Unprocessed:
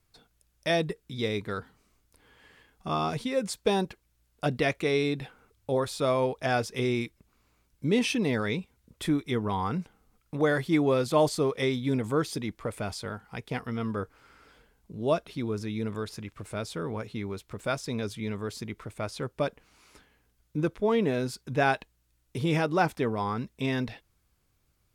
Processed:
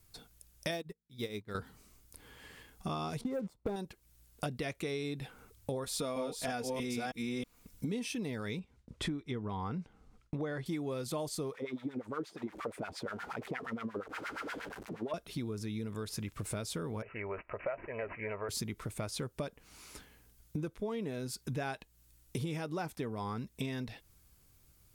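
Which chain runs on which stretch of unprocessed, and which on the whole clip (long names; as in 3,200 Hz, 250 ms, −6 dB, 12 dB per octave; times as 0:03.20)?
0:00.71–0:01.55: running median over 5 samples + hum removal 55.12 Hz, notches 4 + expander for the loud parts 2.5 to 1, over −43 dBFS
0:03.21–0:03.76: Savitzky-Golay smoothing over 65 samples + leveller curve on the samples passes 2
0:05.84–0:08.08: delay that plays each chunk backwards 319 ms, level −1 dB + comb filter 4.2 ms, depth 53%
0:08.59–0:10.66: noise gate with hold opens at −56 dBFS, closes at −60 dBFS + low-pass filter 6,900 Hz + high-shelf EQ 4,000 Hz −9.5 dB
0:11.54–0:15.14: converter with a step at zero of −35.5 dBFS + upward compression, threshold −32 dBFS + auto-filter band-pass sine 8.5 Hz 290–2,000 Hz
0:17.02–0:18.49: low shelf with overshoot 390 Hz −11.5 dB, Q 3 + comb filter 3.1 ms, depth 33% + bad sample-rate conversion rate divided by 8×, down none, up filtered
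whole clip: low-shelf EQ 340 Hz +5 dB; downward compressor 8 to 1, threshold −36 dBFS; high-shelf EQ 5,300 Hz +11.5 dB; level +1 dB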